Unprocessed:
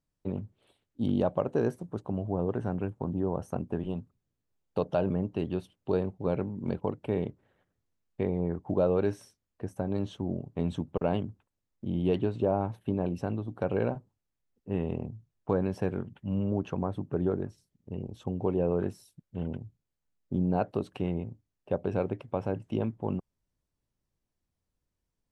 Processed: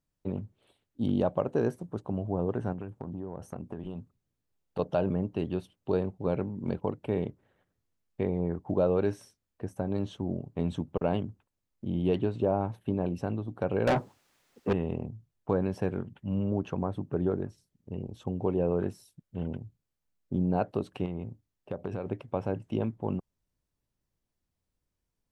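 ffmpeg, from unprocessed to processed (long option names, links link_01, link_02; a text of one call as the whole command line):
ffmpeg -i in.wav -filter_complex "[0:a]asettb=1/sr,asplit=3[link_01][link_02][link_03];[link_01]atrim=end=2.724[link_04];[link_02]atrim=start=2.72:end=4.79,asetpts=PTS-STARTPTS,afade=type=in:duration=0.004:curve=qsin,afade=type=out:start_time=2.066:duration=0.004:curve=qsin,acompressor=threshold=-33dB:ratio=6:attack=3.2:release=140:knee=1:detection=peak[link_05];[link_03]atrim=start=4.786[link_06];[link_04][link_05]acrossfade=duration=0.004:curve1=hsin:curve2=qsin[link_07];[link_07][link_06]acrossfade=duration=0.004:curve1=qsin:curve2=hsin,asettb=1/sr,asplit=3[link_08][link_09][link_10];[link_08]atrim=end=13.874[link_11];[link_09]atrim=start=13.87:end=14.73,asetpts=PTS-STARTPTS,afade=type=in:duration=0.004:curve=qsin,afade=type=out:start_time=0.856:duration=0.004:curve=qsin,asplit=2[link_12][link_13];[link_13]highpass=frequency=720:poles=1,volume=33dB,asoftclip=type=tanh:threshold=-16dB[link_14];[link_12][link_14]amix=inputs=2:normalize=0,lowpass=frequency=4900:poles=1,volume=-6dB[link_15];[link_10]atrim=start=14.726[link_16];[link_11][link_15]acrossfade=duration=0.004:curve1=hsin:curve2=qsin[link_17];[link_17][link_16]acrossfade=duration=0.004:curve1=qsin:curve2=hsin,asettb=1/sr,asplit=3[link_18][link_19][link_20];[link_18]atrim=end=21.054[link_21];[link_19]atrim=start=21.05:end=22.06,asetpts=PTS-STARTPTS,afade=type=in:duration=0.004:curve=qsin,afade=type=out:start_time=1.006:duration=0.004:curve=qsin,acompressor=threshold=-29dB:ratio=6:attack=3.2:release=140:knee=1:detection=peak[link_22];[link_20]atrim=start=22.056[link_23];[link_21][link_22]acrossfade=duration=0.004:curve1=hsin:curve2=qsin[link_24];[link_24][link_23]acrossfade=duration=0.004:curve1=qsin:curve2=hsin" out.wav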